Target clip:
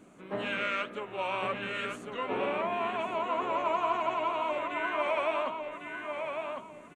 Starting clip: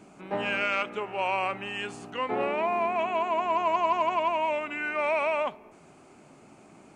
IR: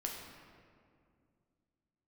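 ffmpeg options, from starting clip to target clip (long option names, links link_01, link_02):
-filter_complex "[0:a]asplit=2[link_01][link_02];[link_02]asetrate=58866,aresample=44100,atempo=0.749154,volume=-13dB[link_03];[link_01][link_03]amix=inputs=2:normalize=0,flanger=delay=3.4:depth=9.7:regen=53:speed=2:shape=sinusoidal,equalizer=frequency=800:width_type=o:width=0.33:gain=-8,equalizer=frequency=2500:width_type=o:width=0.33:gain=-3,equalizer=frequency=5000:width_type=o:width=0.33:gain=-10,asplit=2[link_04][link_05];[link_05]adelay=1102,lowpass=frequency=4100:poles=1,volume=-5dB,asplit=2[link_06][link_07];[link_07]adelay=1102,lowpass=frequency=4100:poles=1,volume=0.29,asplit=2[link_08][link_09];[link_09]adelay=1102,lowpass=frequency=4100:poles=1,volume=0.29,asplit=2[link_10][link_11];[link_11]adelay=1102,lowpass=frequency=4100:poles=1,volume=0.29[link_12];[link_04][link_06][link_08][link_10][link_12]amix=inputs=5:normalize=0,volume=1dB"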